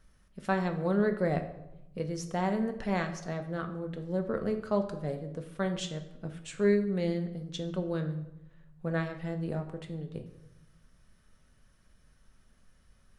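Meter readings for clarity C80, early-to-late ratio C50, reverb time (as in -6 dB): 13.5 dB, 11.0 dB, 0.90 s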